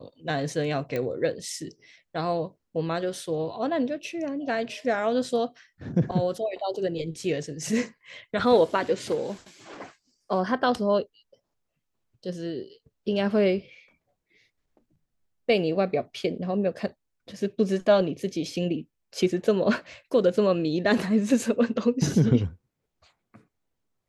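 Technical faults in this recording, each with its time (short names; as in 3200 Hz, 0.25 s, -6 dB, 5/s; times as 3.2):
0.96 pop -17 dBFS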